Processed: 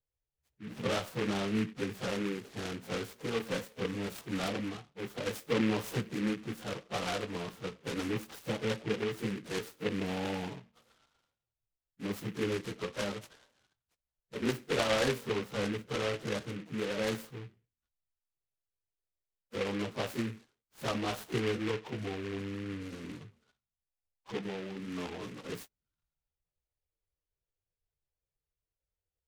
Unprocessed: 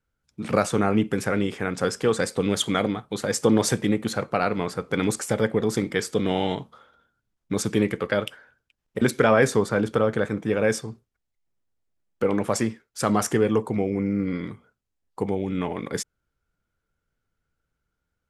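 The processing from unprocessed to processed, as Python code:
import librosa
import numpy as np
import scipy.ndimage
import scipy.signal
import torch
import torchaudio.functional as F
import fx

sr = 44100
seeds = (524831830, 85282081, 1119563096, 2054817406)

y = fx.air_absorb(x, sr, metres=170.0)
y = fx.env_phaser(y, sr, low_hz=230.0, high_hz=3700.0, full_db=-28.0)
y = fx.stretch_vocoder_free(y, sr, factor=1.6)
y = fx.high_shelf(y, sr, hz=3200.0, db=10.0)
y = fx.noise_mod_delay(y, sr, seeds[0], noise_hz=1900.0, depth_ms=0.13)
y = y * librosa.db_to_amplitude(-8.0)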